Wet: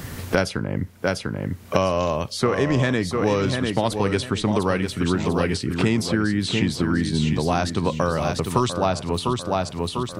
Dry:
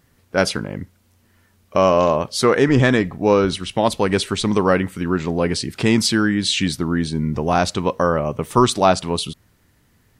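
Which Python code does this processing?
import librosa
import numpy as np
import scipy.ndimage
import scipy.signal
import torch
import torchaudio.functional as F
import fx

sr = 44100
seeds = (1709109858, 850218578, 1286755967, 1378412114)

p1 = fx.peak_eq(x, sr, hz=93.0, db=6.5, octaves=1.1)
p2 = p1 + fx.echo_feedback(p1, sr, ms=697, feedback_pct=27, wet_db=-8, dry=0)
p3 = fx.band_squash(p2, sr, depth_pct=100)
y = F.gain(torch.from_numpy(p3), -6.0).numpy()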